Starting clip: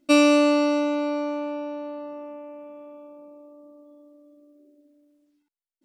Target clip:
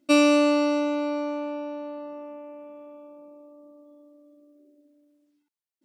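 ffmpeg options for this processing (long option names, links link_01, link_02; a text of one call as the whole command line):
ffmpeg -i in.wav -af "highpass=85,volume=-1.5dB" out.wav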